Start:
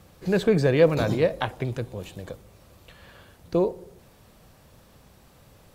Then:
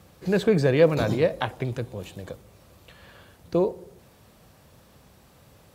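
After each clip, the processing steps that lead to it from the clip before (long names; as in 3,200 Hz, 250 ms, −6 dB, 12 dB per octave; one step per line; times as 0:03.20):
high-pass filter 53 Hz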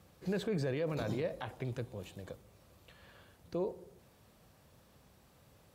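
brickwall limiter −17.5 dBFS, peak gain reduction 11 dB
level −9 dB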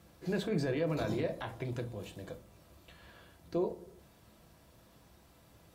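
convolution reverb RT60 0.30 s, pre-delay 3 ms, DRR 4.5 dB
level +1 dB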